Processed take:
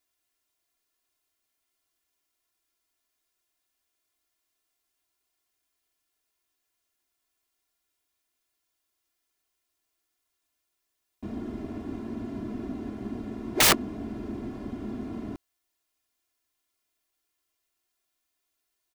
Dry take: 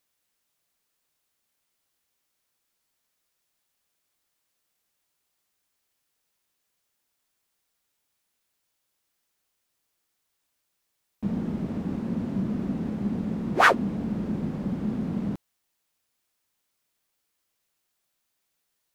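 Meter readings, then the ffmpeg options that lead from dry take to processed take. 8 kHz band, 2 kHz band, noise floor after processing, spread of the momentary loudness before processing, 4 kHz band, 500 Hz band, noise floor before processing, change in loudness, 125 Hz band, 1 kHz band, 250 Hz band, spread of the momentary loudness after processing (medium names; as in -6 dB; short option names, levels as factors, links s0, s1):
+16.5 dB, -5.0 dB, -81 dBFS, 11 LU, +9.0 dB, -3.5 dB, -78 dBFS, -2.0 dB, -9.0 dB, -7.0 dB, -6.0 dB, 18 LU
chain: -af "agate=range=0.398:threshold=0.112:ratio=16:detection=peak,aecho=1:1:2.9:0.95,aeval=exprs='(mod(5.96*val(0)+1,2)-1)/5.96':c=same,volume=1.33"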